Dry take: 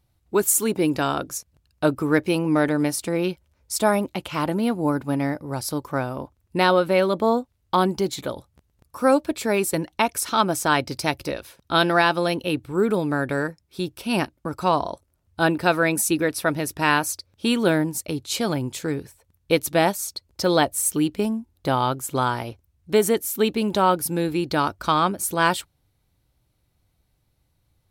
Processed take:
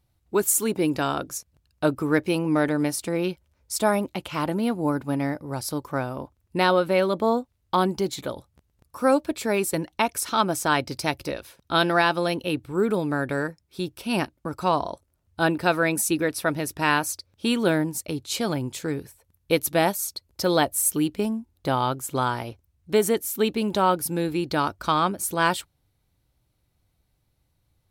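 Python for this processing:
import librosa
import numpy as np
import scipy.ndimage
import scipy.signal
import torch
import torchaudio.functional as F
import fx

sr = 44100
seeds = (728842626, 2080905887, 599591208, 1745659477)

y = fx.peak_eq(x, sr, hz=12000.0, db=6.0, octaves=0.44, at=(18.95, 21.13))
y = F.gain(torch.from_numpy(y), -2.0).numpy()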